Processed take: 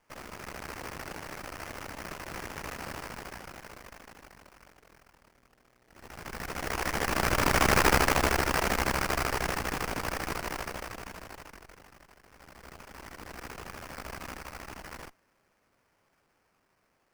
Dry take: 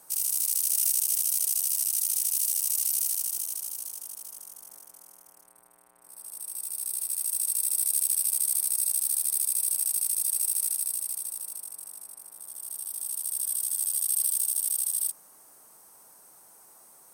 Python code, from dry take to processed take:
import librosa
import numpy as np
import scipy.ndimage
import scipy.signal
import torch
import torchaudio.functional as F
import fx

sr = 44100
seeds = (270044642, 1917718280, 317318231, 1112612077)

p1 = fx.lower_of_two(x, sr, delay_ms=0.43)
p2 = fx.doppler_pass(p1, sr, speed_mps=8, closest_m=4.2, pass_at_s=7.77)
p3 = fx.rider(p2, sr, range_db=3, speed_s=0.5)
p4 = p2 + (p3 * librosa.db_to_amplitude(1.0))
y = fx.sample_hold(p4, sr, seeds[0], rate_hz=3700.0, jitter_pct=20)